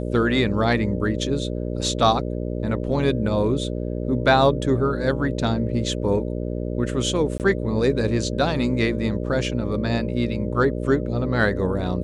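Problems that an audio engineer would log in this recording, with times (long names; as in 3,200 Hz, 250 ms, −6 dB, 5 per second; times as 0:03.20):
mains buzz 60 Hz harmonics 10 −27 dBFS
0:07.38–0:07.40: drop-out 18 ms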